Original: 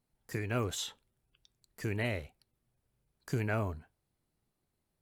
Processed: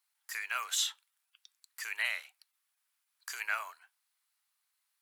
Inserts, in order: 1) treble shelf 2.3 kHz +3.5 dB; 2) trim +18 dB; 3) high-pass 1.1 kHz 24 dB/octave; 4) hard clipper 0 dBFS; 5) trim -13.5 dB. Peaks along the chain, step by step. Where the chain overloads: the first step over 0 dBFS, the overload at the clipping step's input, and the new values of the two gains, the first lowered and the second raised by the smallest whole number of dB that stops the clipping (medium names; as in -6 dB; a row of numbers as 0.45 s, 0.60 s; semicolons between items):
-18.5 dBFS, -0.5 dBFS, -5.0 dBFS, -5.0 dBFS, -18.5 dBFS; nothing clips